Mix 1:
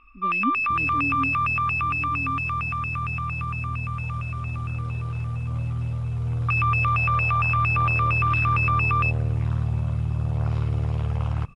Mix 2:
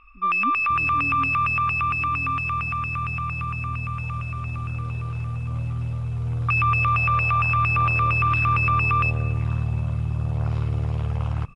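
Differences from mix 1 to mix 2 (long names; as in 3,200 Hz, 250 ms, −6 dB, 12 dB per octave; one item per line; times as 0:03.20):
speech −5.5 dB
first sound: send on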